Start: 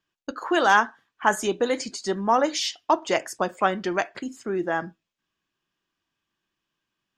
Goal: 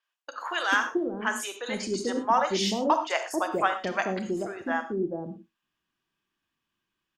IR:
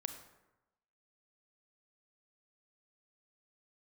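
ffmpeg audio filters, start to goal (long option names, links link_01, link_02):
-filter_complex "[0:a]asettb=1/sr,asplit=3[link_01][link_02][link_03];[link_01]atrim=end=0.534[link_04];[link_02]atrim=start=0.53:end=1.73,asetpts=PTS-STARTPTS,afade=type=in:duration=0.004:curve=qsin,afade=type=out:start_time=1.196:duration=0.004:curve=qsin,equalizer=frequency=800:width_type=o:width=1.1:gain=-11[link_05];[link_03]atrim=start=1.726[link_06];[link_04][link_05]acrossfade=duration=0.004:curve1=hsin:curve2=qsin[link_07];[link_07][link_06]acrossfade=duration=0.004:curve1=qsin:curve2=hsin,acrossover=split=560|5700[link_08][link_09][link_10];[link_10]adelay=30[link_11];[link_08]adelay=440[link_12];[link_12][link_09][link_11]amix=inputs=3:normalize=0[link_13];[1:a]atrim=start_sample=2205,atrim=end_sample=4410,asetrate=34839,aresample=44100[link_14];[link_13][link_14]afir=irnorm=-1:irlink=0"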